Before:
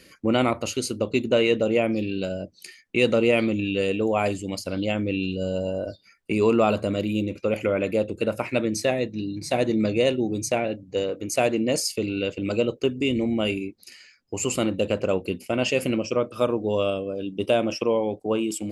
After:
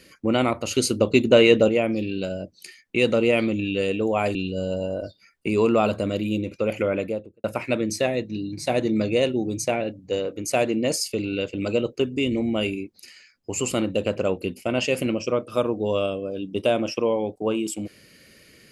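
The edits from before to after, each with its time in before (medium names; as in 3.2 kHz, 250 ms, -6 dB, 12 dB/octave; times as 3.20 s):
0.71–1.69 s: gain +5.5 dB
4.35–5.19 s: delete
7.73–8.28 s: studio fade out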